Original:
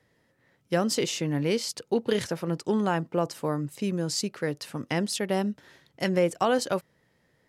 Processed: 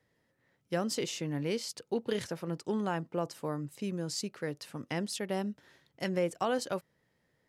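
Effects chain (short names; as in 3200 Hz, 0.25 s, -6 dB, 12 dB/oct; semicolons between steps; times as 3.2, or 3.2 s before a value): gain -7 dB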